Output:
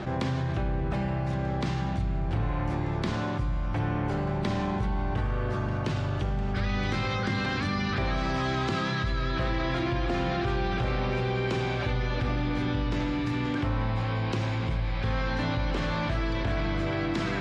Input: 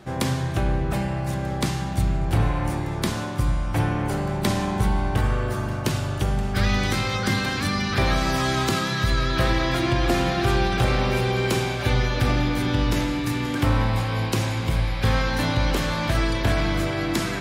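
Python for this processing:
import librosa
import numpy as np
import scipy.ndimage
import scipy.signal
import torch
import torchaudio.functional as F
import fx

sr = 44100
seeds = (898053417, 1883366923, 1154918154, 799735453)

y = fx.air_absorb(x, sr, metres=150.0)
y = fx.env_flatten(y, sr, amount_pct=70)
y = y * librosa.db_to_amplitude(-9.0)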